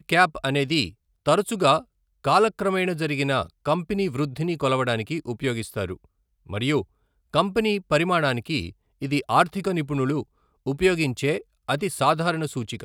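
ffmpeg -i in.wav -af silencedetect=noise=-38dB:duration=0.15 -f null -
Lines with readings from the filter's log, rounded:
silence_start: 0.90
silence_end: 1.26 | silence_duration: 0.36
silence_start: 1.82
silence_end: 2.24 | silence_duration: 0.43
silence_start: 3.46
silence_end: 3.65 | silence_duration: 0.19
silence_start: 5.95
silence_end: 6.49 | silence_duration: 0.55
silence_start: 6.83
silence_end: 7.33 | silence_duration: 0.50
silence_start: 8.71
silence_end: 9.02 | silence_duration: 0.31
silence_start: 10.23
silence_end: 10.66 | silence_duration: 0.44
silence_start: 11.41
silence_end: 11.69 | silence_duration: 0.27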